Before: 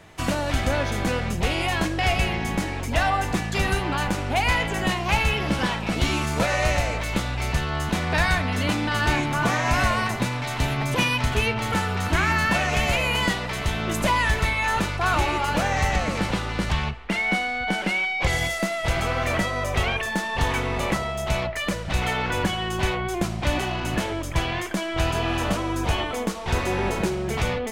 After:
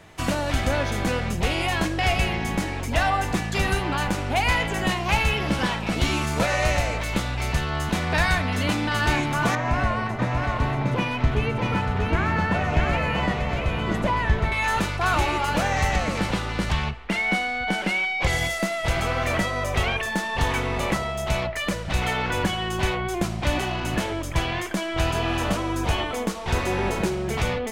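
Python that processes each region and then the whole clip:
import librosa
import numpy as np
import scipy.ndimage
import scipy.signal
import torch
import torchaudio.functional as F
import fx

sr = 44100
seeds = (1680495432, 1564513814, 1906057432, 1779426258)

y = fx.chain(x, sr, fx.lowpass(hz=1200.0, slope=6),
    fx.echo_single(ms=637, db=-3.5), at=(9.55, 14.52))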